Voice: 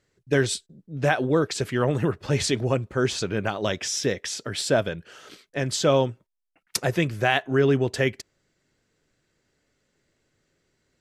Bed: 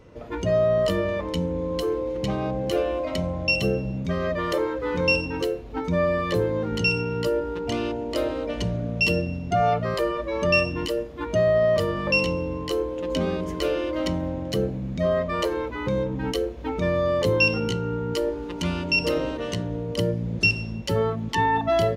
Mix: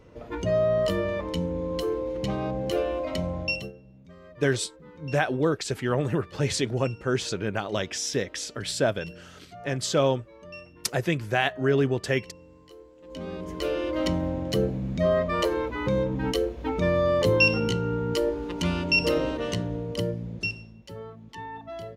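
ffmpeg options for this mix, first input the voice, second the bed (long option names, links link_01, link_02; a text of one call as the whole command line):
ffmpeg -i stem1.wav -i stem2.wav -filter_complex "[0:a]adelay=4100,volume=-2.5dB[link_01];[1:a]volume=20.5dB,afade=type=out:start_time=3.39:duration=0.33:silence=0.0944061,afade=type=in:start_time=13:duration=1.06:silence=0.0707946,afade=type=out:start_time=19.48:duration=1.25:silence=0.141254[link_02];[link_01][link_02]amix=inputs=2:normalize=0" out.wav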